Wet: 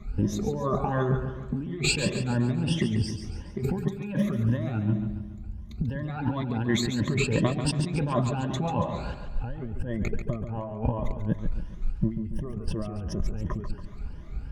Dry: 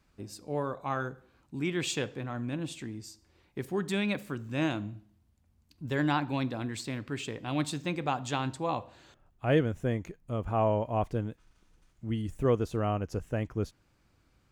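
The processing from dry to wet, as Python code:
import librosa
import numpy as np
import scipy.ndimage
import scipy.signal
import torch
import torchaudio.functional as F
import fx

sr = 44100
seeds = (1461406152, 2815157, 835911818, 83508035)

y = fx.spec_ripple(x, sr, per_octave=1.2, drift_hz=2.8, depth_db=21)
y = fx.riaa(y, sr, side='playback')
y = y + 0.41 * np.pad(y, (int(4.9 * sr / 1000.0), 0))[:len(y)]
y = fx.over_compress(y, sr, threshold_db=-32.0, ratio=-1.0)
y = fx.echo_feedback(y, sr, ms=140, feedback_pct=47, wet_db=-8.5)
y = y * librosa.db_to_amplitude(2.5)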